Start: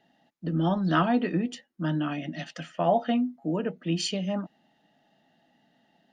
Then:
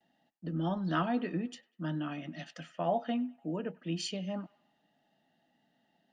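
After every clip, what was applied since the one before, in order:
delay with a band-pass on its return 98 ms, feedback 48%, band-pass 1,500 Hz, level −21 dB
noise gate with hold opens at −60 dBFS
level −7.5 dB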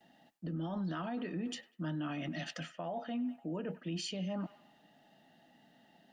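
reversed playback
downward compressor 6 to 1, threshold −40 dBFS, peak gain reduction 14 dB
reversed playback
brickwall limiter −40 dBFS, peak gain reduction 8.5 dB
level +9 dB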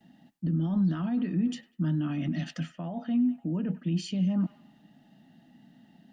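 low shelf with overshoot 330 Hz +10 dB, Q 1.5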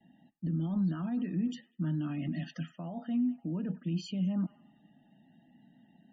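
spectral peaks only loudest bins 64
level −4.5 dB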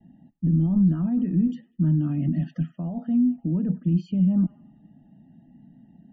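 spectral tilt −4.5 dB per octave

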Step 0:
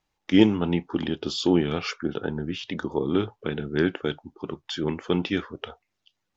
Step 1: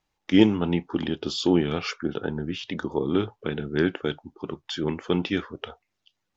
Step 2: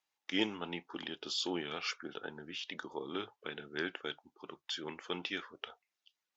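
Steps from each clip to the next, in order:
no processing that can be heard
high-pass filter 1,300 Hz 6 dB per octave; level −5 dB

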